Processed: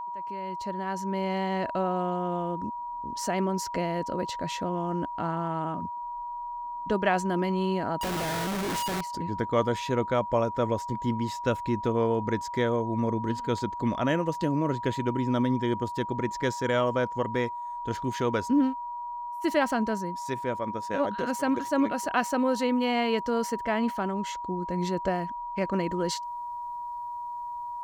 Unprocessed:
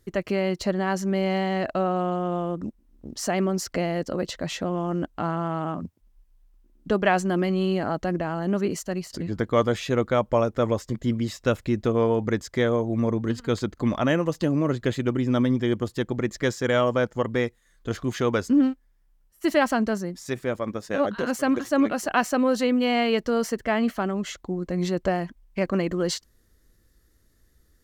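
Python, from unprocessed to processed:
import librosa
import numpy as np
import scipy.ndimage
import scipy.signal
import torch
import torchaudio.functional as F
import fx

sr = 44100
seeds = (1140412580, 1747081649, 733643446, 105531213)

y = fx.fade_in_head(x, sr, length_s=1.55)
y = y + 10.0 ** (-29.0 / 20.0) * np.sin(2.0 * np.pi * 960.0 * np.arange(len(y)) / sr)
y = fx.schmitt(y, sr, flips_db=-36.0, at=(8.01, 9.01))
y = y * 10.0 ** (-4.0 / 20.0)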